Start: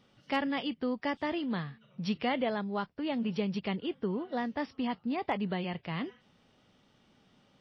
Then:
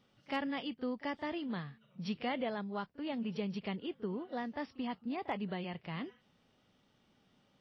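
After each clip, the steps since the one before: reverse echo 36 ms -19 dB; trim -5.5 dB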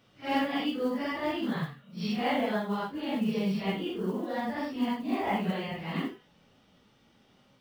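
phase randomisation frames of 200 ms; modulation noise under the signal 31 dB; trim +8 dB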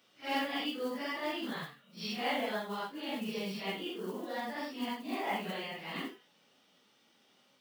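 high-pass 260 Hz 12 dB/octave; treble shelf 2.4 kHz +8.5 dB; trim -5.5 dB

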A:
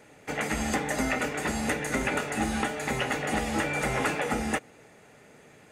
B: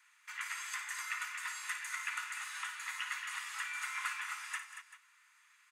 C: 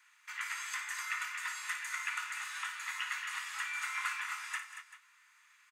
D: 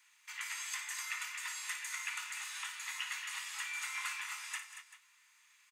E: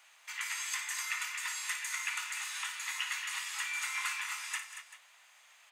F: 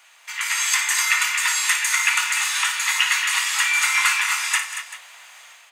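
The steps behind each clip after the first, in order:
steep high-pass 970 Hz 96 dB/octave; multi-tap echo 56/92/189/232/388 ms -9.5/-17/-15/-10/-16.5 dB; trim -8.5 dB
peaking EQ 9.8 kHz -4 dB 0.46 oct; doubling 23 ms -11 dB; trim +1.5 dB
peaking EQ 1.4 kHz -11 dB 1.2 oct; trim +3 dB
band noise 650–3600 Hz -70 dBFS; trim +4 dB
level rider gain up to 8 dB; on a send at -11 dB: reverberation RT60 0.60 s, pre-delay 4 ms; on the sum: trim +8.5 dB

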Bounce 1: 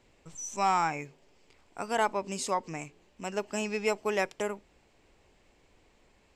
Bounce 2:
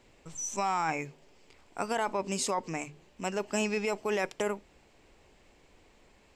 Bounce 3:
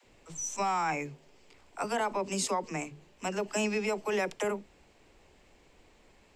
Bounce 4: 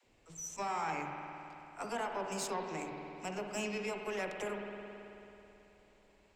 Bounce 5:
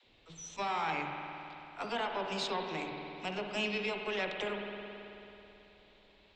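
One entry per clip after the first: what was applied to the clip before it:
hum notches 50/100/150 Hz; in parallel at +2.5 dB: compressor with a negative ratio -31 dBFS, ratio -0.5; on the sum: trim -6 dB
phase dispersion lows, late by 49 ms, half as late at 340 Hz
Chebyshev shaper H 4 -20 dB, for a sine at -17 dBFS; spring tank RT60 3.2 s, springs 54 ms, chirp 45 ms, DRR 2.5 dB; trim -8 dB
resonant low-pass 3.7 kHz, resonance Q 4.5; trim +1.5 dB

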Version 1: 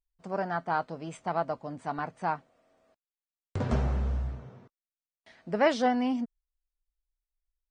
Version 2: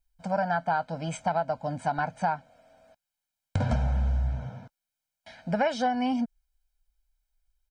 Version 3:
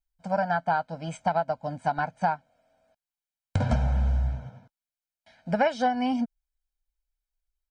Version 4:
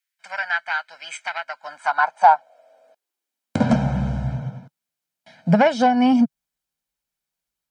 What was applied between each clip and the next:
comb 1.3 ms, depth 98%; compression 5:1, threshold -29 dBFS, peak gain reduction 12.5 dB; trim +5.5 dB
upward expansion 1.5:1, over -46 dBFS; trim +3 dB
Chebyshev shaper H 5 -23 dB, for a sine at -10.5 dBFS; high-pass sweep 1.9 kHz -> 150 Hz, 1.40–3.98 s; trim +5.5 dB

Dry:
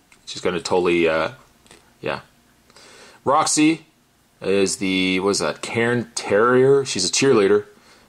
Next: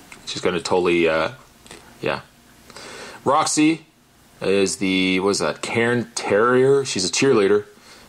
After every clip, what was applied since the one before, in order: three bands compressed up and down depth 40%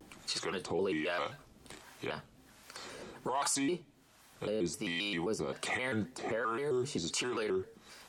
peak limiter -16 dBFS, peak gain reduction 10 dB; harmonic tremolo 1.3 Hz, depth 70%, crossover 610 Hz; vibrato with a chosen wave square 3.8 Hz, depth 160 cents; trim -6.5 dB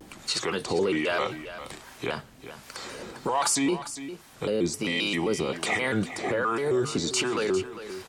delay 401 ms -12.5 dB; trim +8 dB

